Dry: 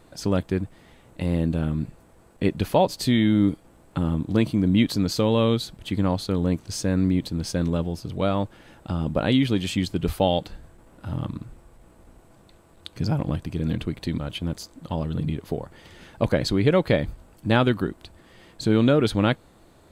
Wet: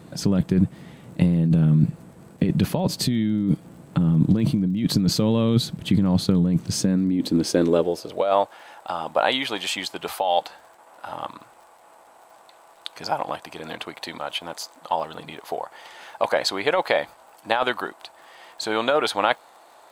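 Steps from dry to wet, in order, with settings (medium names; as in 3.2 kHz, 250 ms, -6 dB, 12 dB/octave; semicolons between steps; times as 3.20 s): high-pass sweep 160 Hz -> 800 Hz, 6.66–8.57 s; compressor with a negative ratio -22 dBFS, ratio -1; bass shelf 120 Hz +11.5 dB; crackle 58 per s -44 dBFS; trim +1 dB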